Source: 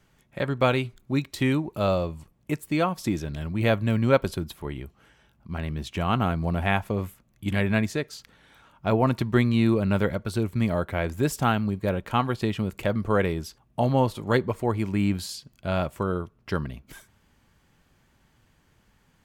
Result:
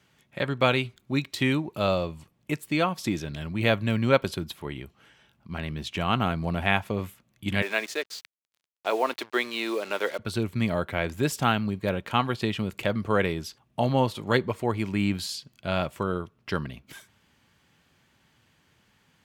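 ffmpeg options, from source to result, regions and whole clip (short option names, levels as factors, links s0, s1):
-filter_complex "[0:a]asettb=1/sr,asplit=3[s0][s1][s2];[s0]atrim=end=7.624[s3];[s1]atrim=start=7.62:end=10.19,asetpts=PTS-STARTPTS,afade=t=in:d=0.004:c=qsin,afade=t=out:st=2.566:d=0.004:c=qsin,highpass=f=370:w=0.5412,highpass=f=370:w=1.3066,acrusher=bits=6:mix=0:aa=0.5[s4];[s2]atrim=start=10.186[s5];[s3][s4]acrossfade=d=0.004:c1=hsin:c2=qsin[s6];[s6][s5]acrossfade=d=0.004:c1=qsin:c2=hsin,highpass=88,equalizer=f=3200:w=0.73:g=6,volume=0.841"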